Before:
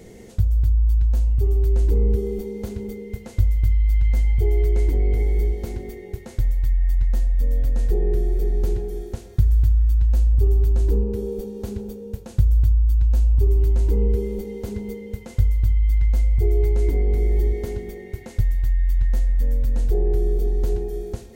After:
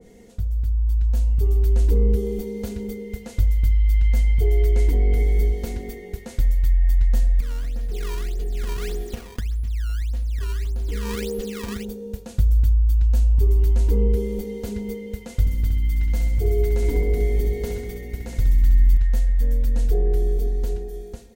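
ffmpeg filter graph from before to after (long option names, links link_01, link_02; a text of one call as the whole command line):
ffmpeg -i in.wav -filter_complex "[0:a]asettb=1/sr,asplit=3[link_01][link_02][link_03];[link_01]atrim=end=7.404[link_04];[link_02]atrim=start=7.4:end=11.85,asetpts=PTS-STARTPTS,afade=type=in:duration=0.004:curve=qsin,afade=type=out:start_time=4.446:duration=0.004:curve=qsin,acompressor=threshold=-24dB:ratio=16:attack=3.2:release=140:knee=1:detection=peak,acrusher=samples=18:mix=1:aa=0.000001:lfo=1:lforange=28.8:lforate=1.7[link_05];[link_03]atrim=start=11.846[link_06];[link_04][link_05]acrossfade=duration=0.004:curve1=hsin:curve2=qsin[link_07];[link_07][link_06]acrossfade=duration=0.004:curve1=qsin:curve2=hsin,asettb=1/sr,asplit=3[link_08][link_09][link_10];[link_08]atrim=end=15.404[link_11];[link_09]atrim=start=15.4:end=18.97,asetpts=PTS-STARTPTS,afade=type=in:duration=0.004:curve=qsin,afade=type=out:start_time=3.566:duration=0.004:curve=qsin,aeval=exprs='val(0)+0.0126*(sin(2*PI*60*n/s)+sin(2*PI*2*60*n/s)/2+sin(2*PI*3*60*n/s)/3+sin(2*PI*4*60*n/s)/4+sin(2*PI*5*60*n/s)/5)':channel_layout=same,aecho=1:1:67|134|201|268|335|402|469:0.501|0.276|0.152|0.0834|0.0459|0.0252|0.0139,atrim=end_sample=157437[link_12];[link_10]atrim=start=18.966[link_13];[link_11][link_12]acrossfade=duration=0.004:curve1=hsin:curve2=qsin[link_14];[link_14][link_13]acrossfade=duration=0.004:curve1=qsin:curve2=hsin,aecho=1:1:4.2:0.46,dynaudnorm=framelen=120:gausssize=17:maxgain=8dB,adynamicequalizer=threshold=0.0112:dfrequency=1700:dqfactor=0.7:tfrequency=1700:tqfactor=0.7:attack=5:release=100:ratio=0.375:range=2:mode=boostabove:tftype=highshelf,volume=-6.5dB" out.wav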